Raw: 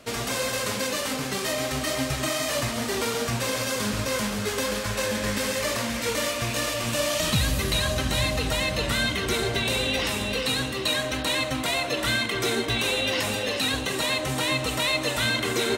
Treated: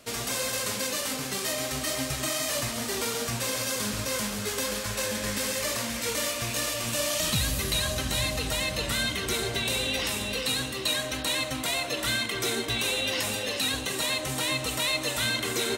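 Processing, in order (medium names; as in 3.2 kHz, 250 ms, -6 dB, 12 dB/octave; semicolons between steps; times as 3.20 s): treble shelf 4.5 kHz +8 dB; trim -5 dB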